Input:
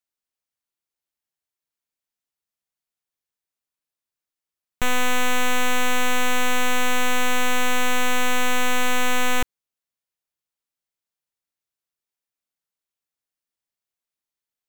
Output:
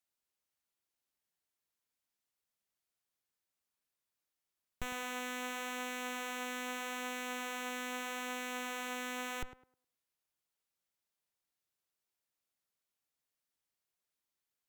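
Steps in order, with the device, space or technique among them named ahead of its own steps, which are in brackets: rockabilly slapback (valve stage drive 38 dB, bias 0.75; tape echo 106 ms, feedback 29%, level -8 dB, low-pass 1.5 kHz); trim +4 dB

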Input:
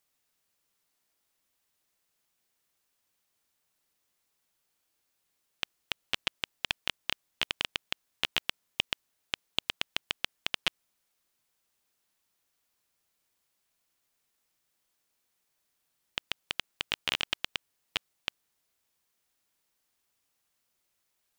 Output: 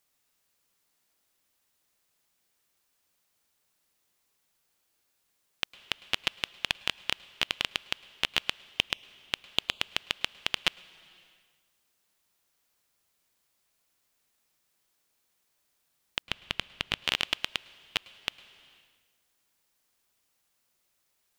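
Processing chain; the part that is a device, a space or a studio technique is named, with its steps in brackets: compressed reverb return (on a send at -8 dB: reverberation RT60 1.2 s, pre-delay 102 ms + compression 4:1, threshold -48 dBFS, peak gain reduction 15.5 dB); 16.22–17.04 s: on the sum: tone controls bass +8 dB, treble -4 dB; trim +2.5 dB

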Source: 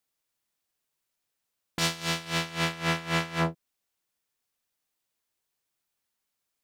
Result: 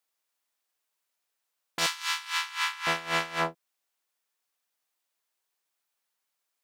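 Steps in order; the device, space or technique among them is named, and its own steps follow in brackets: filter by subtraction (in parallel: low-pass 860 Hz 12 dB/octave + polarity flip); 1.86–2.87 s: on the sum: steep high-pass 870 Hz 96 dB/octave

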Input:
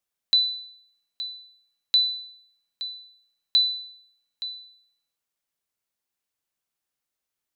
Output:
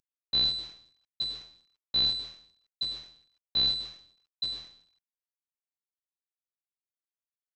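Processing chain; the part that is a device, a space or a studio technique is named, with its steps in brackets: early wireless headset (high-pass 230 Hz 24 dB/octave; CVSD coder 32 kbps)

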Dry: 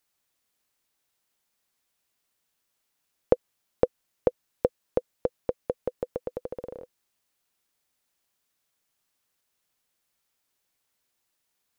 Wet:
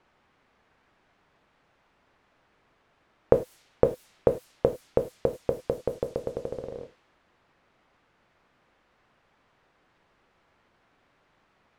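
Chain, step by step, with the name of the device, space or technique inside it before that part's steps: bass shelf 290 Hz +6 dB; gated-style reverb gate 120 ms falling, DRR 5 dB; cassette deck with a dynamic noise filter (white noise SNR 23 dB; level-controlled noise filter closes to 1.5 kHz, open at -25.5 dBFS)

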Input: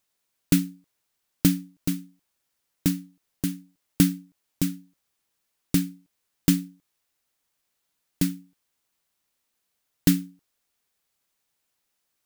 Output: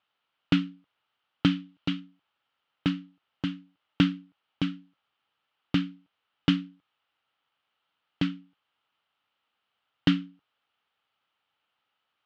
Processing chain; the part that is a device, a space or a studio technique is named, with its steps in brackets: guitar cabinet (cabinet simulation 100–3600 Hz, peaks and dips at 170 Hz -4 dB, 240 Hz -3 dB, 370 Hz -4 dB, 830 Hz +6 dB, 1.3 kHz +10 dB, 3 kHz +9 dB); 1.51–2.00 s: peaking EQ 3.3 kHz +4 dB 1.2 oct

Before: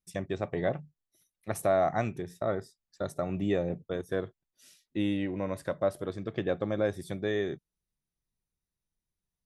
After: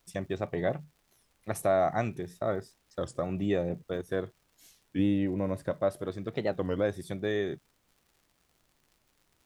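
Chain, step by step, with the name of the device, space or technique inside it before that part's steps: 4.99–5.71 s: tilt shelf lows +4.5 dB, about 690 Hz; warped LP (warped record 33 1/3 rpm, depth 250 cents; crackle 110 per s -52 dBFS; pink noise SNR 40 dB)

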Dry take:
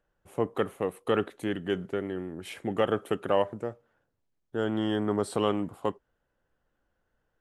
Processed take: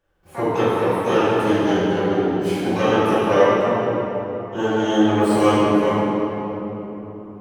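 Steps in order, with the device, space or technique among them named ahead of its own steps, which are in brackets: shimmer-style reverb (harmony voices +12 st -8 dB; reverberation RT60 3.8 s, pre-delay 3 ms, DRR -10.5 dB)

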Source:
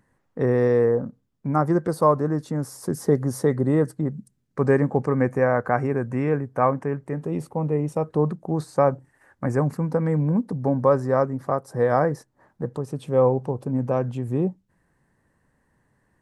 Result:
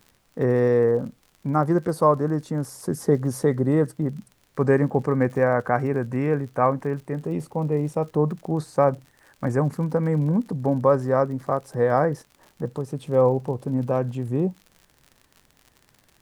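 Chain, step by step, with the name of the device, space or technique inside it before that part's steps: vinyl LP (crackle 59 per s -37 dBFS; pink noise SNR 42 dB)

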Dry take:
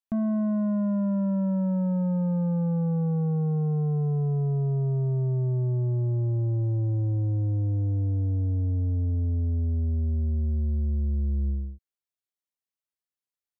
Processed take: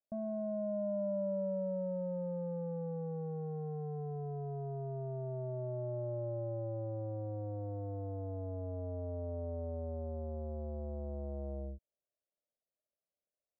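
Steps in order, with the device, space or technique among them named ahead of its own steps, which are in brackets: overdriven synthesiser ladder filter (saturation -39.5 dBFS, distortion -12 dB; four-pole ladder low-pass 640 Hz, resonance 75%); trim +10.5 dB

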